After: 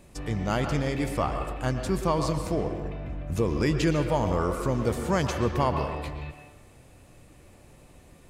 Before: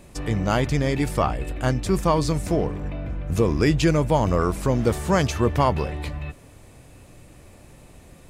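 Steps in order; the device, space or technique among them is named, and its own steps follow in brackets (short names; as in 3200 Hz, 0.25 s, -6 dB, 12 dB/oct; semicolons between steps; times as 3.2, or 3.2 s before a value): filtered reverb send (on a send: HPF 210 Hz 12 dB/oct + LPF 4500 Hz 12 dB/oct + reverb RT60 1.1 s, pre-delay 0.108 s, DRR 5 dB); on the sum: gain -5.5 dB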